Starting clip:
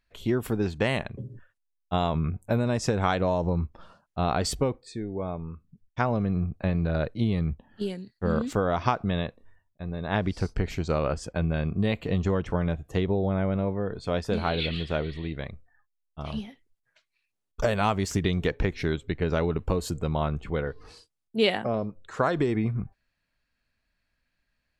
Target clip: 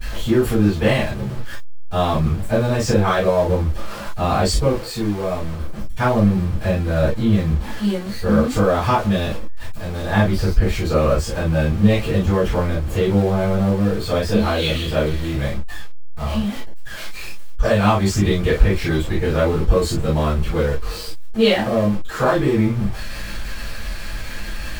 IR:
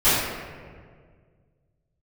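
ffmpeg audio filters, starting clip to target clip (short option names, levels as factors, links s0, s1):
-filter_complex "[0:a]aeval=exprs='val(0)+0.5*0.0251*sgn(val(0))':c=same[s0];[1:a]atrim=start_sample=2205,atrim=end_sample=4410,asetrate=61740,aresample=44100[s1];[s0][s1]afir=irnorm=-1:irlink=0,volume=0.335"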